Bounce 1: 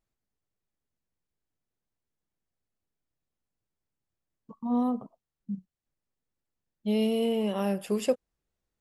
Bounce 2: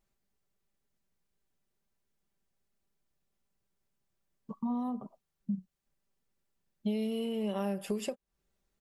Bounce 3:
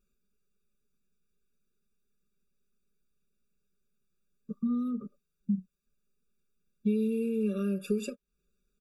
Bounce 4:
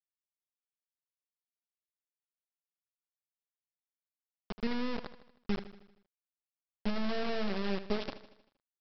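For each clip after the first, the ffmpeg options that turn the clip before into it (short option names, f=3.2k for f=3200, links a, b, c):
-af "acompressor=threshold=-36dB:ratio=12,aecho=1:1:5.1:0.44,volume=3.5dB"
-af "aecho=1:1:4.8:0.72,afftfilt=real='re*eq(mod(floor(b*sr/1024/560),2),0)':imag='im*eq(mod(floor(b*sr/1024/560),2),0)':win_size=1024:overlap=0.75"
-af "aresample=11025,acrusher=bits=3:dc=4:mix=0:aa=0.000001,aresample=44100,aecho=1:1:78|156|234|312|390|468:0.2|0.11|0.0604|0.0332|0.0183|0.01"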